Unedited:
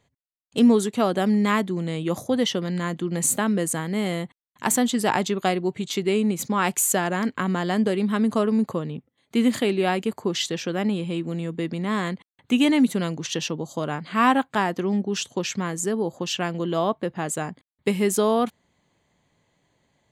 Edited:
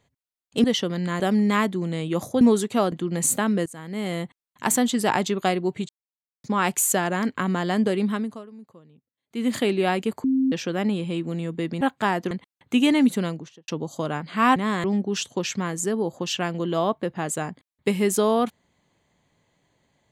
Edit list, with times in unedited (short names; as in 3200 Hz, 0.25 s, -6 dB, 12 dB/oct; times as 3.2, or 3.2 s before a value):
0.64–1.15 swap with 2.36–2.92
3.66–4.22 fade in, from -22 dB
5.89–6.44 mute
8.08–9.56 dip -22.5 dB, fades 0.43 s quadratic
10.24–10.52 bleep 264 Hz -17.5 dBFS
11.81–12.09 swap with 14.34–14.84
12.95–13.46 studio fade out